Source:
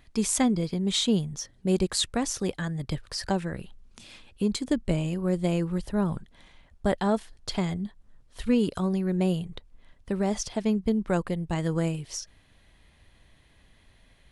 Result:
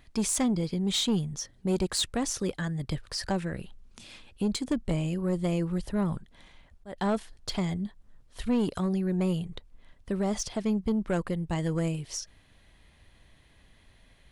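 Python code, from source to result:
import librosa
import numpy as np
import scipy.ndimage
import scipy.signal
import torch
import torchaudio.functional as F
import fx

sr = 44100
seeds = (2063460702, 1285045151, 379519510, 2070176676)

y = fx.auto_swell(x, sr, attack_ms=394.0, at=(6.16, 6.96), fade=0.02)
y = 10.0 ** (-20.0 / 20.0) * np.tanh(y / 10.0 ** (-20.0 / 20.0))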